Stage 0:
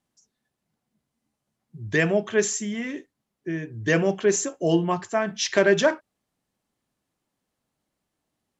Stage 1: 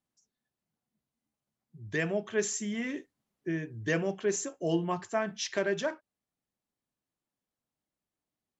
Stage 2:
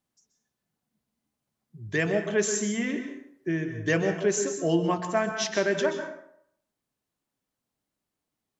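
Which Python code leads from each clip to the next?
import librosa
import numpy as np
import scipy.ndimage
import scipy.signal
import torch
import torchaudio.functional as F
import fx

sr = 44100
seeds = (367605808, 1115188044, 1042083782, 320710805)

y1 = fx.rider(x, sr, range_db=10, speed_s=0.5)
y1 = y1 * 10.0 ** (-8.0 / 20.0)
y2 = fx.rev_plate(y1, sr, seeds[0], rt60_s=0.67, hf_ratio=0.65, predelay_ms=115, drr_db=7.0)
y2 = y2 * 10.0 ** (4.5 / 20.0)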